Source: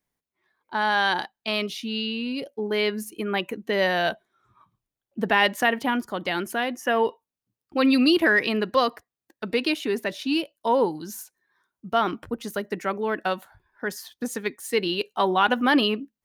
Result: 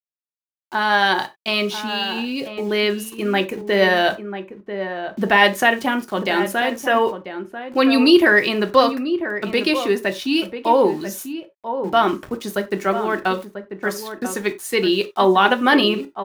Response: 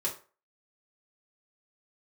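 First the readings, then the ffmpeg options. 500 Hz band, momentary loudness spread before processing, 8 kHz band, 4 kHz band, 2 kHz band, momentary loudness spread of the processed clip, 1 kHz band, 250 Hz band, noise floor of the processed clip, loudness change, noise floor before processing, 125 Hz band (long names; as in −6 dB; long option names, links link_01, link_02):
+6.5 dB, 12 LU, +5.5 dB, +5.5 dB, +6.0 dB, 13 LU, +6.0 dB, +5.5 dB, below −85 dBFS, +5.5 dB, below −85 dBFS, +6.5 dB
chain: -filter_complex "[0:a]aeval=exprs='val(0)*gte(abs(val(0)),0.00668)':channel_layout=same,asplit=2[link_01][link_02];[link_02]adelay=991.3,volume=-9dB,highshelf=frequency=4000:gain=-22.3[link_03];[link_01][link_03]amix=inputs=2:normalize=0,asplit=2[link_04][link_05];[1:a]atrim=start_sample=2205,atrim=end_sample=4410[link_06];[link_05][link_06]afir=irnorm=-1:irlink=0,volume=-6.5dB[link_07];[link_04][link_07]amix=inputs=2:normalize=0,volume=2dB"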